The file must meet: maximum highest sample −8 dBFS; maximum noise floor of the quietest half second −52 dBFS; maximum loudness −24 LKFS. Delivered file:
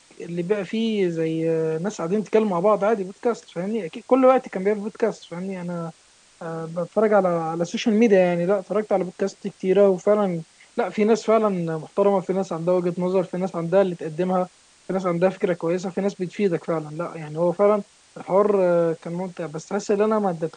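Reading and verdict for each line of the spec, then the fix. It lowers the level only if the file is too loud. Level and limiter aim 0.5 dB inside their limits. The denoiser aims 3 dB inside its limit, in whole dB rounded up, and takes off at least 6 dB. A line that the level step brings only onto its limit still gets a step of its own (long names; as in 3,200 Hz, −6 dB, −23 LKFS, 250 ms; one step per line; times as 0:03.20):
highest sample −5.0 dBFS: out of spec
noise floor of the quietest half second −55 dBFS: in spec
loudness −22.5 LKFS: out of spec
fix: level −2 dB
brickwall limiter −8.5 dBFS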